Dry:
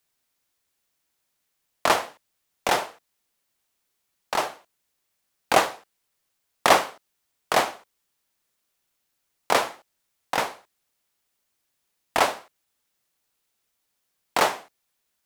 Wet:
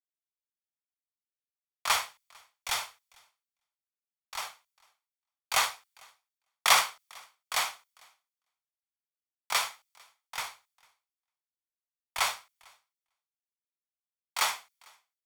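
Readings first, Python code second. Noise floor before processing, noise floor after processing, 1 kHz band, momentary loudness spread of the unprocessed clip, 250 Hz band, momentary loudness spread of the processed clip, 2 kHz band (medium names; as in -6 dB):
-77 dBFS, under -85 dBFS, -8.5 dB, 13 LU, under -25 dB, 19 LU, -4.5 dB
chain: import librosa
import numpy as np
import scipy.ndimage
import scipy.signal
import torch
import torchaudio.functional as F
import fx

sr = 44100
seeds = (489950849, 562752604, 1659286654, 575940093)

y = fx.low_shelf(x, sr, hz=170.0, db=-5.5)
y = y + 0.33 * np.pad(y, (int(0.9 * sr / 1000.0), 0))[:len(y)]
y = fx.echo_feedback(y, sr, ms=450, feedback_pct=19, wet_db=-15.0)
y = fx.transient(y, sr, attack_db=-1, sustain_db=5)
y = fx.tone_stack(y, sr, knobs='10-0-10')
y = fx.band_widen(y, sr, depth_pct=100)
y = y * librosa.db_to_amplitude(-6.0)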